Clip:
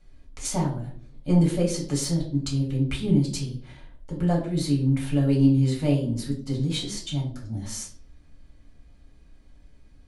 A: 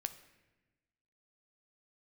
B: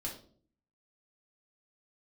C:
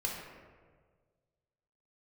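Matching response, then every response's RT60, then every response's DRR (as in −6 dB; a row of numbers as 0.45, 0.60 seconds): B; 1.1, 0.50, 1.6 seconds; 9.5, −3.0, −2.5 decibels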